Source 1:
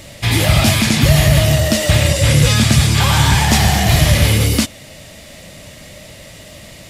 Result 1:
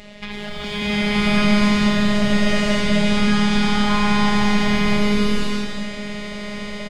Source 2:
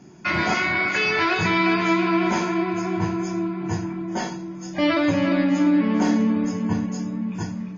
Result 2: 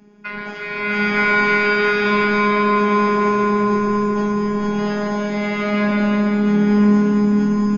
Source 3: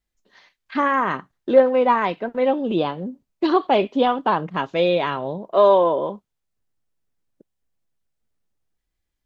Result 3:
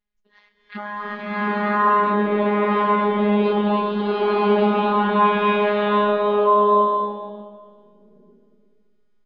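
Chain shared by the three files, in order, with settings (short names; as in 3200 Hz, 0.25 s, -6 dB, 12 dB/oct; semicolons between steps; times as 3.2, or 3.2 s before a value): LPF 3300 Hz 12 dB/oct; notch 620 Hz, Q 12; compressor 1.5:1, threshold -29 dBFS; limiter -17.5 dBFS; robotiser 207 Hz; echo 0.131 s -17.5 dB; bloom reverb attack 0.91 s, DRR -12 dB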